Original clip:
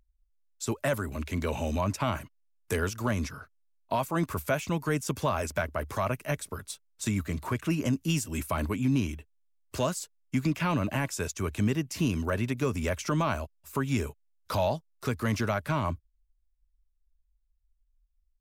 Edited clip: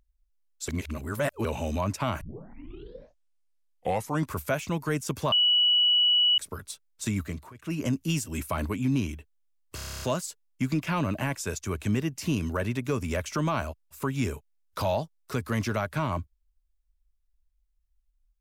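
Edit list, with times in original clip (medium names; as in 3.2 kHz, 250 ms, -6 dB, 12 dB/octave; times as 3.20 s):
0.68–1.45 s: reverse
2.21 s: tape start 2.14 s
5.32–6.38 s: bleep 2.94 kHz -18.5 dBFS
7.24–7.83 s: dip -20.5 dB, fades 0.29 s
9.75 s: stutter 0.03 s, 10 plays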